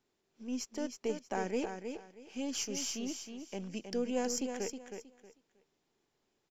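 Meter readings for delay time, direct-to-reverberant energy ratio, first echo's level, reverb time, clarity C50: 317 ms, no reverb audible, −7.0 dB, no reverb audible, no reverb audible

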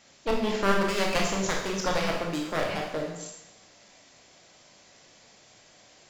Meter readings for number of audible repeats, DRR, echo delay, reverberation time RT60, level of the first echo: no echo audible, −1.0 dB, no echo audible, 0.90 s, no echo audible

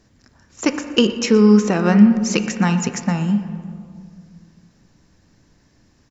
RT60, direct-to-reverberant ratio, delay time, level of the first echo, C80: 2.2 s, 7.5 dB, 119 ms, −19.0 dB, 10.5 dB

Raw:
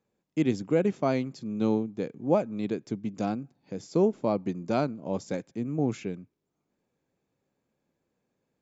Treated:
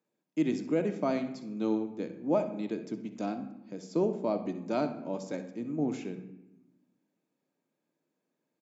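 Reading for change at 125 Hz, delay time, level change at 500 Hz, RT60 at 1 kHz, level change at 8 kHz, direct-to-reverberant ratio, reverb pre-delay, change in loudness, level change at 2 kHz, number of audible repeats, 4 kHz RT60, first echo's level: −8.0 dB, 64 ms, −4.0 dB, 0.90 s, can't be measured, 6.5 dB, 3 ms, −3.5 dB, −4.0 dB, 1, 0.60 s, −14.5 dB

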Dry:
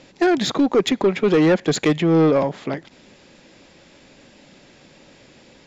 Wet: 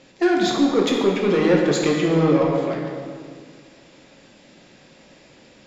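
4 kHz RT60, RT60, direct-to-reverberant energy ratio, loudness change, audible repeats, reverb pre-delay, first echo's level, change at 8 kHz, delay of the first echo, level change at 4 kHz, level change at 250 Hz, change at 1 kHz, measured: 1.4 s, 2.0 s, −1.5 dB, −1.0 dB, no echo audible, 7 ms, no echo audible, can't be measured, no echo audible, −0.5 dB, −0.5 dB, −0.5 dB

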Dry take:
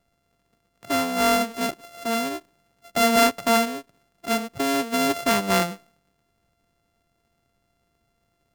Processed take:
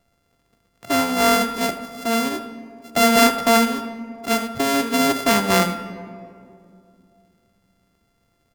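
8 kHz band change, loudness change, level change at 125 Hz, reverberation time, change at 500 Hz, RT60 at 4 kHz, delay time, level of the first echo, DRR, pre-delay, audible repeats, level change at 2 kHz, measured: +4.0 dB, +3.5 dB, +5.0 dB, 2.5 s, +3.0 dB, 1.2 s, 79 ms, −14.5 dB, 9.5 dB, 4 ms, 1, +4.0 dB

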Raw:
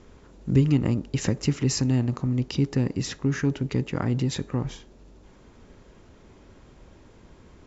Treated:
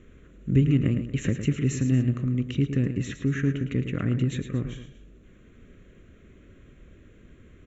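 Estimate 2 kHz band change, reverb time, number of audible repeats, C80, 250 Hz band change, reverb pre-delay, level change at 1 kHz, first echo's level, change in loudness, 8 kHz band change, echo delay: 0.0 dB, no reverb audible, 2, no reverb audible, −0.5 dB, no reverb audible, −8.5 dB, −9.5 dB, −0.5 dB, can't be measured, 109 ms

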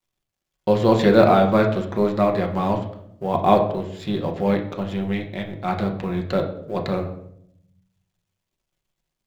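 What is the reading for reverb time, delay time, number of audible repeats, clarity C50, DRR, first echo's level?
0.70 s, no echo audible, no echo audible, 9.0 dB, 1.5 dB, no echo audible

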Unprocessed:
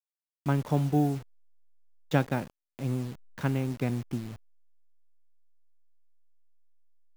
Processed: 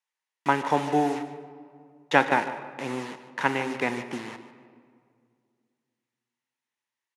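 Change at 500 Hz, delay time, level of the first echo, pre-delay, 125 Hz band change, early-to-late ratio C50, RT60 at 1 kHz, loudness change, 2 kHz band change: +6.0 dB, 149 ms, −15.0 dB, 22 ms, −10.5 dB, 10.5 dB, 2.1 s, +3.5 dB, +13.0 dB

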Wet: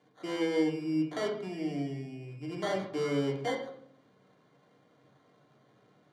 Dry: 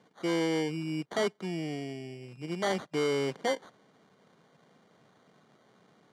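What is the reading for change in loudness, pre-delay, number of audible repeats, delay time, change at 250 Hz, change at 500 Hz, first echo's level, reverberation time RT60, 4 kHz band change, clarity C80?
−1.0 dB, 3 ms, no echo audible, no echo audible, +1.5 dB, −1.5 dB, no echo audible, 0.60 s, −4.5 dB, 10.5 dB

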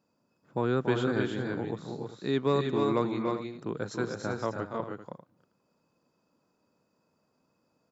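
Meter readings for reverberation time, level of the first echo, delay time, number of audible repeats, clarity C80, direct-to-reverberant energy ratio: no reverb audible, −7.5 dB, 285 ms, 3, no reverb audible, no reverb audible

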